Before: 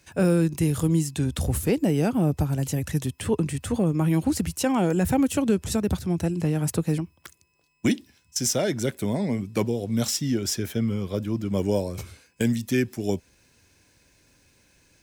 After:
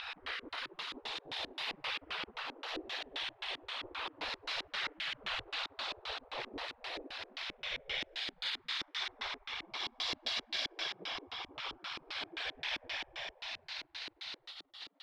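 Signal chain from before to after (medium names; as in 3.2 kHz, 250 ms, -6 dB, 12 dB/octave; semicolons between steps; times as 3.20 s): spectral blur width 420 ms; sine folder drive 8 dB, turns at -16 dBFS; compression 6:1, threshold -33 dBFS, peak gain reduction 14 dB; peak limiter -30.5 dBFS, peak gain reduction 10.5 dB; reverberation RT60 3.7 s, pre-delay 17 ms, DRR 1 dB; whisper effect; 9.50–11.54 s: comb 1.8 ms, depth 32%; spectral gate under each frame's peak -20 dB weak; ten-band graphic EQ 2 kHz +4 dB, 4 kHz +8 dB, 8 kHz -12 dB; LFO low-pass square 3.8 Hz 320–3900 Hz; trim +3 dB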